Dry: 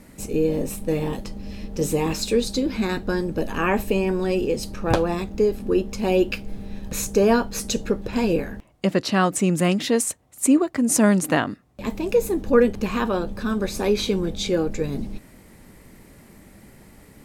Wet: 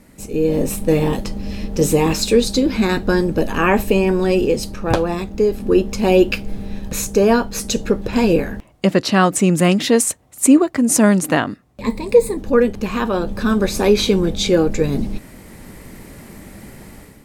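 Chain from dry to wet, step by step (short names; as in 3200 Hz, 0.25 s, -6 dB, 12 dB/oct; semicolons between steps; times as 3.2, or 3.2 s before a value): 11.81–12.37 ripple EQ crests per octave 0.96, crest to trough 12 dB; AGC gain up to 11 dB; gain -1 dB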